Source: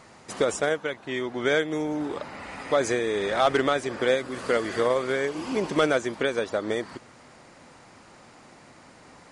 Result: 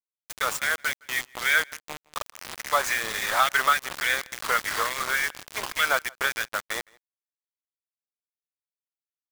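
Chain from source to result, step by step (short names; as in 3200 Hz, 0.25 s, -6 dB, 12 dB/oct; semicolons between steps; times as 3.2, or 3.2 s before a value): LFO high-pass sine 3.5 Hz 970–2000 Hz; bit-crush 5-bit; outdoor echo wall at 28 m, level -26 dB; gain +1 dB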